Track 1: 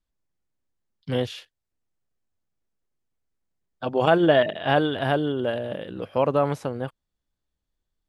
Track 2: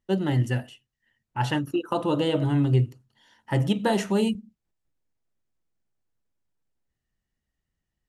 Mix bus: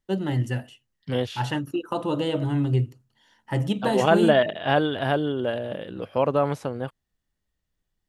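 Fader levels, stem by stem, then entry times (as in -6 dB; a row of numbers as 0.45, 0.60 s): -0.5, -1.5 dB; 0.00, 0.00 s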